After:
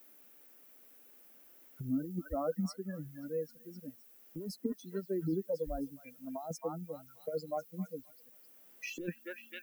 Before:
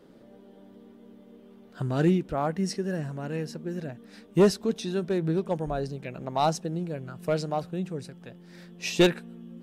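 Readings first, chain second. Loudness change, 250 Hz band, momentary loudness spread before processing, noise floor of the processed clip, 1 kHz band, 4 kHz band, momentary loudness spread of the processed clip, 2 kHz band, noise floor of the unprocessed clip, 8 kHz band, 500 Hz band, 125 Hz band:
−11.5 dB, −10.5 dB, 15 LU, −60 dBFS, −14.5 dB, −18.0 dB, 20 LU, −12.5 dB, −52 dBFS, −13.0 dB, −11.0 dB, −14.0 dB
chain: spectral dynamics exaggerated over time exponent 3
echo through a band-pass that steps 262 ms, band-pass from 1,400 Hz, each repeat 0.7 octaves, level −11.5 dB
compressor whose output falls as the input rises −38 dBFS, ratio −1
background noise blue −60 dBFS
graphic EQ with 10 bands 125 Hz −11 dB, 250 Hz +10 dB, 500 Hz +3 dB, 1,000 Hz −9 dB, 2,000 Hz −6 dB, 4,000 Hz −10 dB, 8,000 Hz −10 dB
multiband upward and downward compressor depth 40%
level +1.5 dB

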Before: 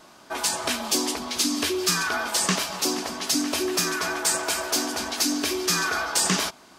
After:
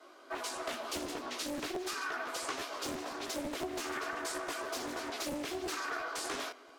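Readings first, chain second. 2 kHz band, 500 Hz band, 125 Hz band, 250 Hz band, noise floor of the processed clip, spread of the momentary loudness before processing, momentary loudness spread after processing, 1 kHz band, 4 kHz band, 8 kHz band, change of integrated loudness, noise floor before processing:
−11.5 dB, −9.0 dB, −18.0 dB, −13.0 dB, −56 dBFS, 3 LU, 2 LU, −9.5 dB, −16.0 dB, −18.5 dB, −14.0 dB, −51 dBFS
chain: parametric band 12,000 Hz +5.5 dB 0.4 octaves
notch comb filter 890 Hz
multi-voice chorus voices 4, 1.1 Hz, delay 16 ms, depth 4 ms
Butterworth high-pass 260 Hz 96 dB per octave
high-shelf EQ 4,100 Hz −12 dB
tape delay 123 ms, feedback 61%, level −22 dB, low-pass 2,600 Hz
downward compressor 2.5 to 1, threshold −37 dBFS, peak gain reduction 9 dB
regular buffer underruns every 0.17 s, samples 512, repeat, from 0:00.38
highs frequency-modulated by the lows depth 0.92 ms

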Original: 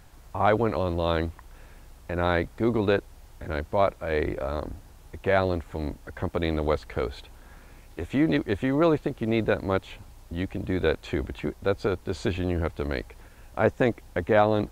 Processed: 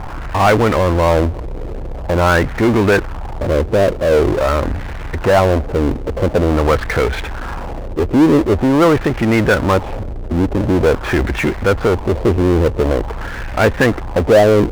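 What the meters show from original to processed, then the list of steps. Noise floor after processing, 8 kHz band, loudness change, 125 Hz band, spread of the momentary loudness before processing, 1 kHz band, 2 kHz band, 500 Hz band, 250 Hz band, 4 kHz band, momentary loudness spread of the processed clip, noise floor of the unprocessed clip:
−26 dBFS, can't be measured, +12.0 dB, +13.0 dB, 15 LU, +11.5 dB, +12.5 dB, +12.0 dB, +12.0 dB, +11.0 dB, 14 LU, −51 dBFS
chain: auto-filter low-pass sine 0.46 Hz 430–2,100 Hz
power curve on the samples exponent 0.5
level +2.5 dB

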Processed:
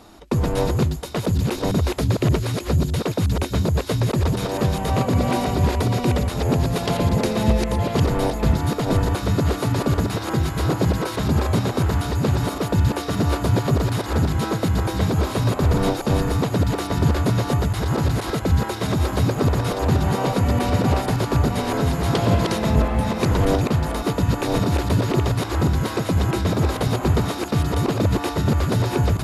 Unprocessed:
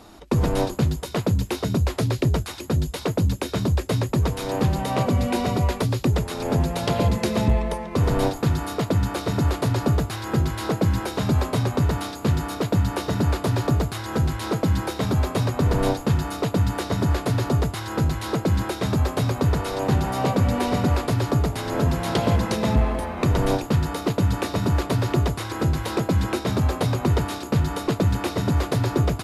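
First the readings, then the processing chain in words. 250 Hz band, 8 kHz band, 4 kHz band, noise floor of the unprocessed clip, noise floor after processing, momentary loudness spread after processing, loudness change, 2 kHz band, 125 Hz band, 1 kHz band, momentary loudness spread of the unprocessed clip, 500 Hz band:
+2.0 dB, +2.0 dB, +2.0 dB, −35 dBFS, −30 dBFS, 3 LU, +2.0 dB, +2.0 dB, +2.0 dB, +2.0 dB, 3 LU, +2.0 dB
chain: delay that plays each chunk backwards 572 ms, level −2 dB

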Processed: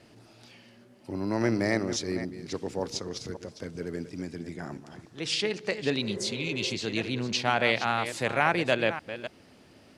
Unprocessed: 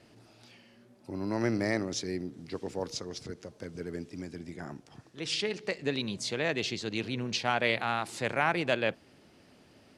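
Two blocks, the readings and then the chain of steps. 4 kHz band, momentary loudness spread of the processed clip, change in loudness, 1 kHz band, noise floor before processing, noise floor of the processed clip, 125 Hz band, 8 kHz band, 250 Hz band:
+3.5 dB, 14 LU, +3.0 dB, +3.5 dB, −60 dBFS, −56 dBFS, +3.0 dB, +3.5 dB, +3.5 dB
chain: delay that plays each chunk backwards 281 ms, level −11 dB
healed spectral selection 0:06.04–0:06.72, 340–2,100 Hz before
level +3 dB

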